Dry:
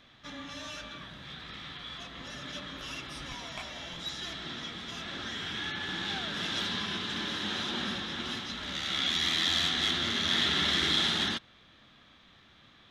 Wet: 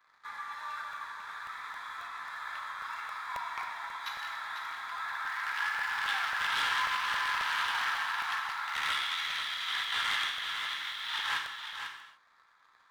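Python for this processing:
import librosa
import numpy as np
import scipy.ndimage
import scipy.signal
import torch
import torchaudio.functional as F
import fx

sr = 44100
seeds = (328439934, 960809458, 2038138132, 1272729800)

y = fx.wiener(x, sr, points=15)
y = scipy.signal.sosfilt(scipy.signal.ellip(4, 1.0, 50, 910.0, 'highpass', fs=sr, output='sos'), y)
y = fx.peak_eq(y, sr, hz=6300.0, db=-9.0, octaves=1.9)
y = fx.over_compress(y, sr, threshold_db=-40.0, ratio=-0.5)
y = fx.leveller(y, sr, passes=2)
y = y + 10.0 ** (-7.5 / 20.0) * np.pad(y, (int(497 * sr / 1000.0), 0))[:len(y)]
y = fx.rev_gated(y, sr, seeds[0], gate_ms=320, shape='falling', drr_db=2.0)
y = fx.buffer_crackle(y, sr, first_s=0.93, period_s=0.27, block=64, kind='repeat')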